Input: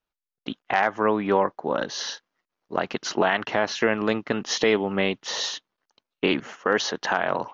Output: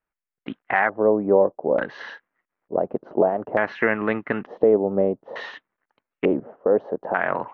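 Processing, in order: treble shelf 2.8 kHz -10.5 dB; LFO low-pass square 0.56 Hz 580–2000 Hz

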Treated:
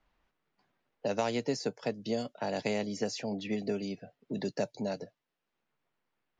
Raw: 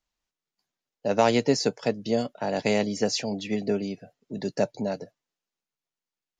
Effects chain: level-controlled noise filter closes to 2.1 kHz, open at -21.5 dBFS; three bands compressed up and down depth 70%; trim -8 dB

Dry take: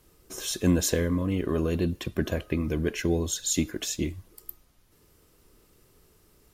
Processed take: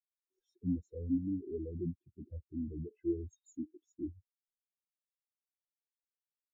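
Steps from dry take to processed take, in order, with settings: dynamic bell 280 Hz, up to +4 dB, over -38 dBFS, Q 0.84; in parallel at -1.5 dB: compression, threshold -32 dBFS, peak gain reduction 16.5 dB; on the sum: saturation -25.5 dBFS, distortion -6 dB; spectral contrast expander 4:1; trim +2 dB

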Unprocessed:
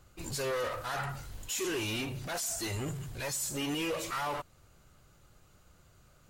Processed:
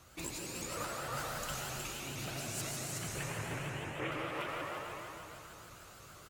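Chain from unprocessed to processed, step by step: 2.91–4.12 s: CVSD coder 16 kbps; compressor with a negative ratio -41 dBFS, ratio -0.5; high-pass 47 Hz; bass shelf 410 Hz -7 dB; hum notches 50/100 Hz; delay 367 ms -3.5 dB; reverberation RT60 3.2 s, pre-delay 62 ms, DRR -2.5 dB; vibrato with a chosen wave saw up 6.5 Hz, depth 160 cents

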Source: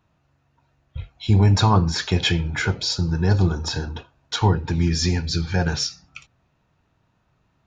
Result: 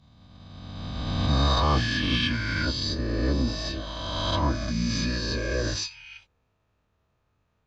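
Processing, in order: reverse spectral sustain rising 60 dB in 2.20 s; formant-preserving pitch shift -6.5 st; trim -8.5 dB

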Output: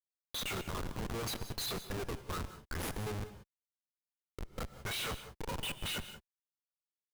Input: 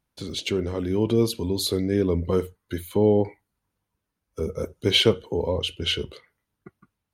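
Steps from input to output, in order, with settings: frequency weighting A; spectral noise reduction 22 dB; amplifier tone stack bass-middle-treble 10-0-10; band-stop 5.1 kHz, Q 8.2; comb 0.8 ms, depth 72%; gain riding within 3 dB 2 s; saturation -21.5 dBFS, distortion -11 dB; flange 0.57 Hz, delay 4.7 ms, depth 9.9 ms, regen 0%; Schmitt trigger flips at -46.5 dBFS; gated-style reverb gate 210 ms rising, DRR 11.5 dB; trim +4.5 dB

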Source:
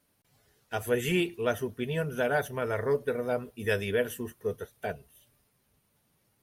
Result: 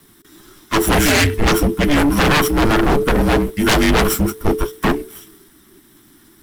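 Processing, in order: comb filter that takes the minimum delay 0.49 ms; frequency shift -440 Hz; sine folder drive 16 dB, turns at -13.5 dBFS; trim +3.5 dB

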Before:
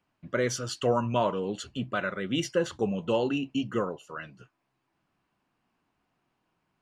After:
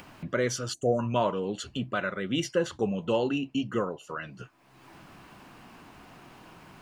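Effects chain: upward compressor, threshold -29 dBFS; time-frequency box 0.74–0.99 s, 790–5900 Hz -26 dB

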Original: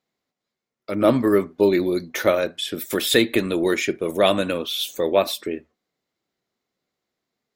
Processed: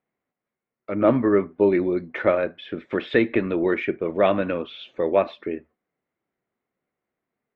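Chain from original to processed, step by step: low-pass 2.4 kHz 24 dB/octave; trim -1 dB

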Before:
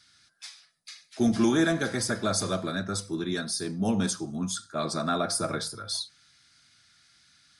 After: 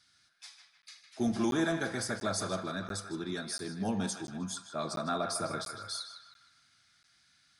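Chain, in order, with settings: peaking EQ 850 Hz +4 dB 0.84 oct; band-passed feedback delay 155 ms, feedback 57%, band-pass 1.7 kHz, level -5.5 dB; crackling interface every 0.69 s, samples 512, zero, from 0.82 s; trim -7 dB

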